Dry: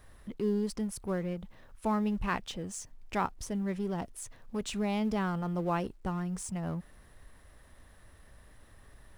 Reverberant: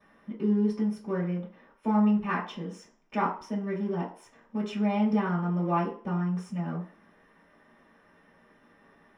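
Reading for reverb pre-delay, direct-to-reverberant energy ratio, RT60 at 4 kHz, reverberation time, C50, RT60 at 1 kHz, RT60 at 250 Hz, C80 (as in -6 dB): 3 ms, -15.0 dB, 0.45 s, 0.45 s, 8.0 dB, 0.50 s, 0.40 s, 12.5 dB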